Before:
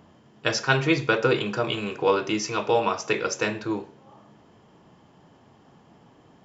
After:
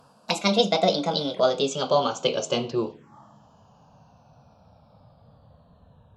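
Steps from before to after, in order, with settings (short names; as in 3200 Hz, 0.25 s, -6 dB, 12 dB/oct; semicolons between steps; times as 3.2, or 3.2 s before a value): speed glide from 157% -> 52%; envelope phaser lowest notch 320 Hz, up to 1800 Hz, full sweep at -26 dBFS; gain +3 dB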